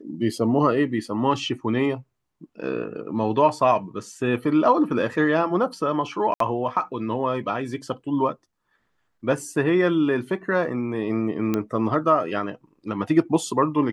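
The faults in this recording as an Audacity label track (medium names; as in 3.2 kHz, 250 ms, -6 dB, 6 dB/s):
6.340000	6.400000	dropout 63 ms
11.540000	11.540000	pop -11 dBFS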